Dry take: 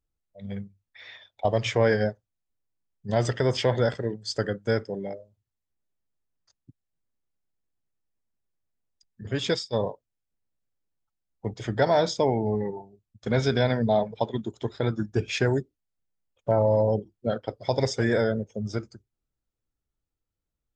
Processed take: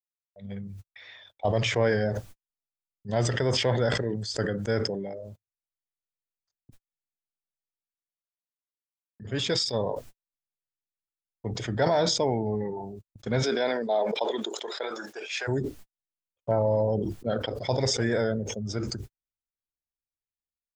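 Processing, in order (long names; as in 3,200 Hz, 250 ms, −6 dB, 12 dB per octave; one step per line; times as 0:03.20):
0:13.42–0:15.47: high-pass filter 260 Hz → 630 Hz 24 dB per octave
noise gate −54 dBFS, range −56 dB
level that may fall only so fast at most 32 dB per second
level −3 dB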